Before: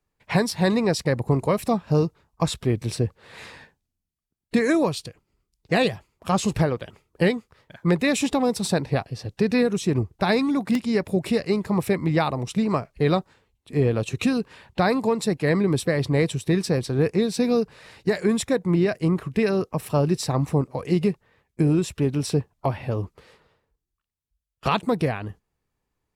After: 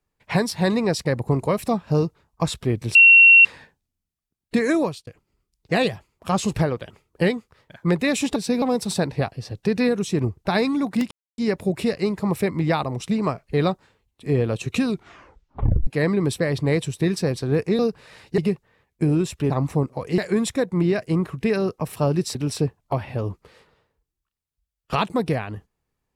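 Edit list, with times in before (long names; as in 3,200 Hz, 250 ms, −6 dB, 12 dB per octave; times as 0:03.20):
0:02.95–0:03.45: beep over 2,730 Hz −7 dBFS
0:04.81–0:05.07: fade out
0:10.85: splice in silence 0.27 s
0:14.30: tape stop 1.04 s
0:17.26–0:17.52: move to 0:08.36
0:18.11–0:20.28: swap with 0:20.96–0:22.08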